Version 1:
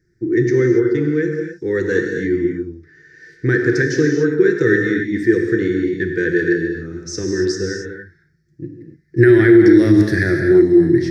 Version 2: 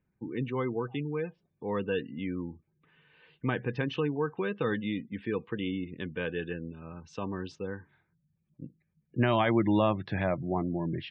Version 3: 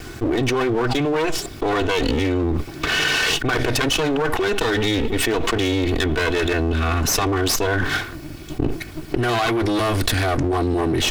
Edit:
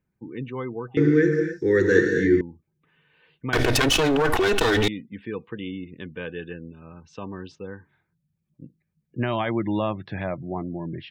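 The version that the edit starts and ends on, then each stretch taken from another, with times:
2
0:00.97–0:02.41: punch in from 1
0:03.53–0:04.88: punch in from 3

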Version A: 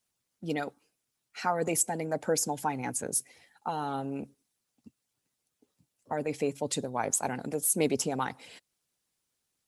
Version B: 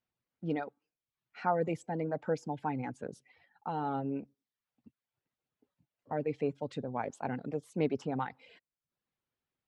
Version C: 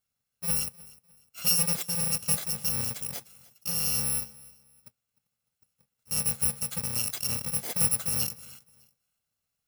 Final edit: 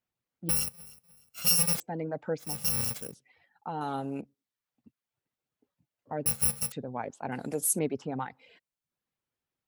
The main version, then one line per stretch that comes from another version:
B
0:00.49–0:01.80: punch in from C
0:02.50–0:03.03: punch in from C, crossfade 0.24 s
0:03.81–0:04.21: punch in from A
0:06.26–0:06.72: punch in from C
0:07.32–0:07.79: punch in from A

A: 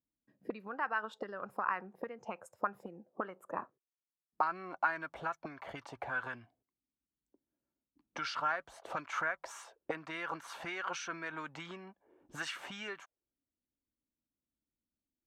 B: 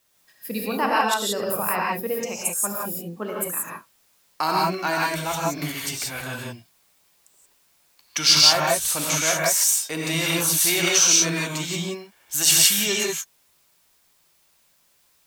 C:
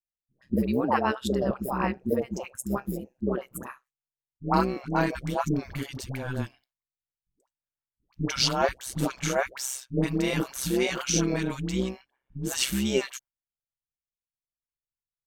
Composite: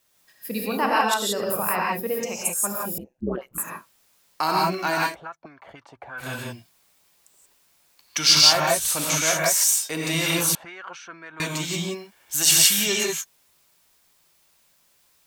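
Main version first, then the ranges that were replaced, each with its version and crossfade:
B
0:02.98–0:03.58: punch in from C
0:05.11–0:06.22: punch in from A, crossfade 0.10 s
0:10.55–0:11.40: punch in from A

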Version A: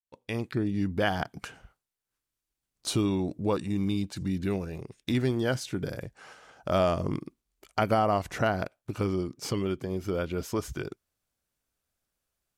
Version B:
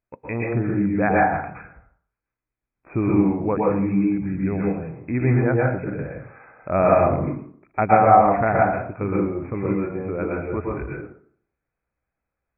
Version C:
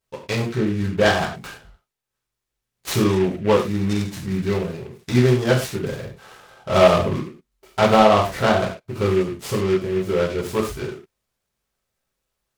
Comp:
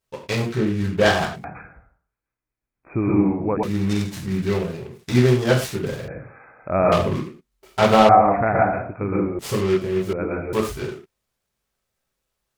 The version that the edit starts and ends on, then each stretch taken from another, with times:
C
0:01.44–0:03.63: punch in from B
0:06.08–0:06.92: punch in from B
0:08.09–0:09.39: punch in from B
0:10.13–0:10.53: punch in from B
not used: A

